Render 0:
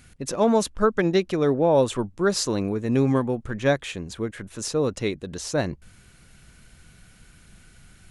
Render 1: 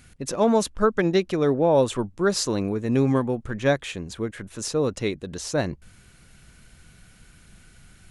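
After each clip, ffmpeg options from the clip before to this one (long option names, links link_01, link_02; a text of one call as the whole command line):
ffmpeg -i in.wav -af anull out.wav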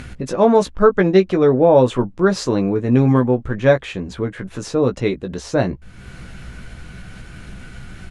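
ffmpeg -i in.wav -filter_complex "[0:a]acompressor=mode=upward:threshold=-30dB:ratio=2.5,aemphasis=mode=reproduction:type=75fm,asplit=2[link_01][link_02];[link_02]adelay=16,volume=-6.5dB[link_03];[link_01][link_03]amix=inputs=2:normalize=0,volume=5.5dB" out.wav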